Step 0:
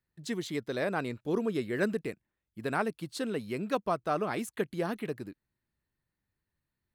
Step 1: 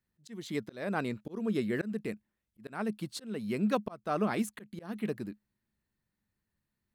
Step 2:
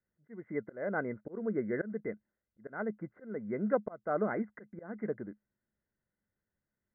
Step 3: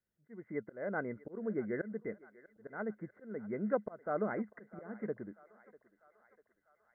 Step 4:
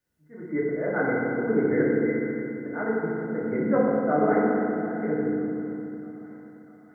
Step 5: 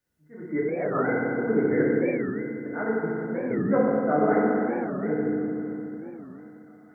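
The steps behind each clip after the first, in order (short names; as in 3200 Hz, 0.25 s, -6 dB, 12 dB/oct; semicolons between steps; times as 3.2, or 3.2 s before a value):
bell 210 Hz +10.5 dB 0.22 oct; auto swell 0.303 s
rippled Chebyshev low-pass 2100 Hz, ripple 9 dB; gain +3 dB
thinning echo 0.646 s, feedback 67%, high-pass 580 Hz, level -18 dB; gain -3 dB
FDN reverb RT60 2.7 s, low-frequency decay 1.4×, high-frequency decay 0.55×, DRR -7 dB; gain +5 dB
record warp 45 rpm, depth 250 cents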